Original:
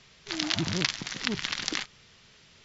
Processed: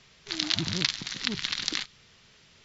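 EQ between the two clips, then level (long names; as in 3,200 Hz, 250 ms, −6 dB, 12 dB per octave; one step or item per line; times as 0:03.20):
dynamic equaliser 4,000 Hz, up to +6 dB, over −45 dBFS, Q 2.7
dynamic equaliser 620 Hz, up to −5 dB, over −48 dBFS, Q 0.81
−1.0 dB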